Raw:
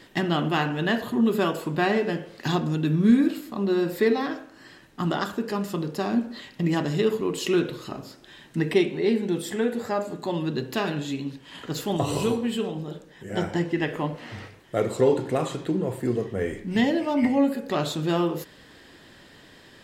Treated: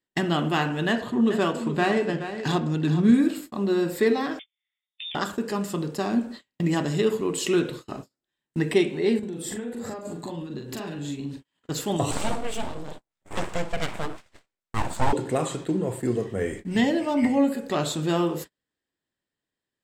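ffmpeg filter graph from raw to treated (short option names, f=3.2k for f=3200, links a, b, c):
-filter_complex "[0:a]asettb=1/sr,asplit=3[a][b][c];[a]atrim=end=0.884[d];[b]atrim=start=0.88:end=3.14,asetpts=PTS-STARTPTS,afade=t=in:d=0.004:c=qsin,afade=t=out:st=2.256:d=0.004:c=qsin,adynamicsmooth=sensitivity=6:basefreq=5.9k,aecho=1:1:422:0.282,atrim=end_sample=99666[e];[c]atrim=start=3.136[f];[d][e]acrossfade=d=0.004:c1=hsin:c2=qsin[g];[g][f]acrossfade=d=0.004:c1=qsin:c2=hsin,asettb=1/sr,asplit=3[h][i][j];[h]atrim=end=4.394[k];[i]atrim=start=4.39:end=5.15,asetpts=PTS-STARTPTS,afade=t=in:d=0.004:c=qsin,afade=t=out:st=0.756:d=0.004:c=qsin,lowpass=f=3.2k:t=q:w=0.5098,lowpass=f=3.2k:t=q:w=0.6013,lowpass=f=3.2k:t=q:w=0.9,lowpass=f=3.2k:t=q:w=2.563,afreqshift=-3800,highpass=f=1.4k:w=0.5412,highpass=f=1.4k:w=1.3066,acompressor=threshold=-32dB:ratio=10:attack=3.2:release=140:knee=1:detection=peak[l];[j]atrim=start=5.146[m];[k][l]acrossfade=d=0.004:c1=hsin:c2=qsin[n];[n][m]acrossfade=d=0.004:c1=qsin:c2=hsin,asettb=1/sr,asplit=3[o][p][q];[o]atrim=end=9.194[r];[p]atrim=start=9.19:end=11.43,asetpts=PTS-STARTPTS,afade=t=in:d=0.004:c=qsin,afade=t=out:st=2.236:d=0.004:c=qsin,lowshelf=f=360:g=6.5,acompressor=threshold=-31dB:ratio=8:attack=3.2:release=140:knee=1:detection=peak,asplit=2[s][t];[t]adelay=42,volume=-4dB[u];[s][u]amix=inputs=2:normalize=0,atrim=end_sample=98784[v];[q]atrim=start=11.426[w];[r][v]acrossfade=d=0.004:c1=hsin:c2=qsin[x];[x][w]acrossfade=d=0.004:c1=qsin:c2=hsin,asettb=1/sr,asplit=3[y][z][aa];[y]atrim=end=12.114[ab];[z]atrim=start=12.11:end=15.13,asetpts=PTS-STARTPTS,afade=t=in:d=0.004:c=qsin,afade=t=out:st=3.016:d=0.004:c=qsin,acrossover=split=8300[ac][ad];[ad]acompressor=threshold=-57dB:ratio=4:attack=1:release=60[ae];[ac][ae]amix=inputs=2:normalize=0,highpass=f=120:w=0.5412,highpass=f=120:w=1.3066,aeval=exprs='abs(val(0))':c=same[af];[aa]atrim=start=15.126[ag];[ab][af]acrossfade=d=0.004:c1=hsin:c2=qsin[ah];[ah][ag]acrossfade=d=0.004:c1=qsin:c2=hsin,agate=range=-38dB:threshold=-36dB:ratio=16:detection=peak,equalizer=f=8k:t=o:w=0.37:g=9"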